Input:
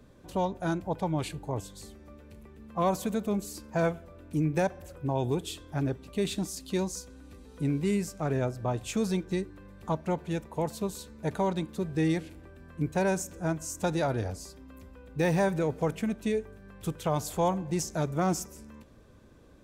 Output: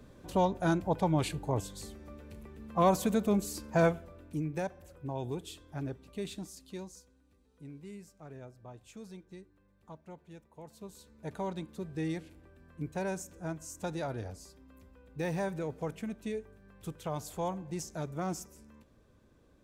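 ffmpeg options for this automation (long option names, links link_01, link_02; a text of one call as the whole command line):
ffmpeg -i in.wav -af "volume=12.5dB,afade=type=out:start_time=3.83:duration=0.62:silence=0.334965,afade=type=out:start_time=6.05:duration=1.18:silence=0.281838,afade=type=in:start_time=10.63:duration=0.83:silence=0.281838" out.wav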